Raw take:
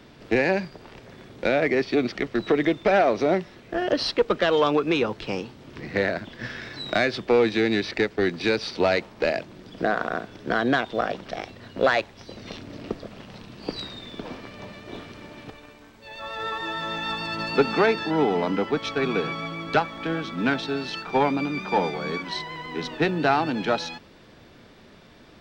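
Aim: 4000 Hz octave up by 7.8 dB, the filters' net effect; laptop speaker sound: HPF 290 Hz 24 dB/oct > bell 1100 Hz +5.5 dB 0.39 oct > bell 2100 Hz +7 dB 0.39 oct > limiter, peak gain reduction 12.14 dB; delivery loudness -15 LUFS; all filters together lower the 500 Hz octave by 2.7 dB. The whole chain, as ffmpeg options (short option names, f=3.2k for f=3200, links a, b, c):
-af "highpass=f=290:w=0.5412,highpass=f=290:w=1.3066,equalizer=f=500:t=o:g=-3.5,equalizer=f=1.1k:t=o:w=0.39:g=5.5,equalizer=f=2.1k:t=o:w=0.39:g=7,equalizer=f=4k:t=o:g=8.5,volume=12.5dB,alimiter=limit=-4dB:level=0:latency=1"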